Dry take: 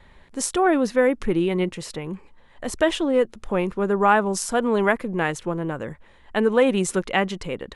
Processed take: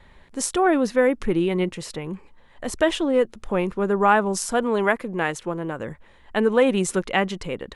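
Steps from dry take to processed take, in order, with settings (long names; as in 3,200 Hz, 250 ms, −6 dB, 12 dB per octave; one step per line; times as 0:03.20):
0:04.63–0:05.80: low-shelf EQ 170 Hz −7 dB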